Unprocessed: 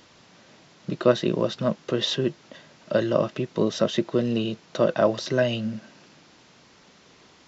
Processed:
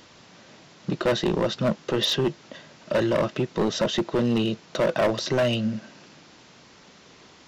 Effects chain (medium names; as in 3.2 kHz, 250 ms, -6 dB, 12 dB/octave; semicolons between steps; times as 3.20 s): overload inside the chain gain 20.5 dB; trim +3 dB